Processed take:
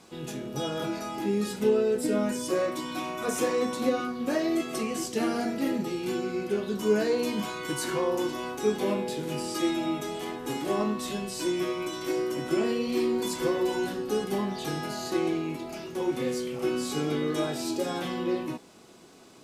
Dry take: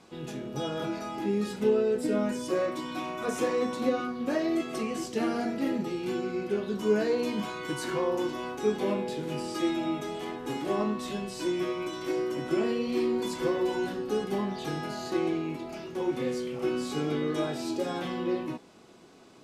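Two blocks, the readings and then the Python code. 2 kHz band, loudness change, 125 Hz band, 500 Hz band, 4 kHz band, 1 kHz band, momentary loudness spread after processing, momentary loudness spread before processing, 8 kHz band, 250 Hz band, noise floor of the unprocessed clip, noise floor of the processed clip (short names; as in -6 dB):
+1.5 dB, +1.5 dB, +1.0 dB, +1.0 dB, +3.5 dB, +1.0 dB, 6 LU, 6 LU, +7.0 dB, +1.0 dB, -46 dBFS, -45 dBFS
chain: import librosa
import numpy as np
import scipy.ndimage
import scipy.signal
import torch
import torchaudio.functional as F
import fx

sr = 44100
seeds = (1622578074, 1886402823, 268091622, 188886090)

y = fx.high_shelf(x, sr, hz=6700.0, db=10.5)
y = y * librosa.db_to_amplitude(1.0)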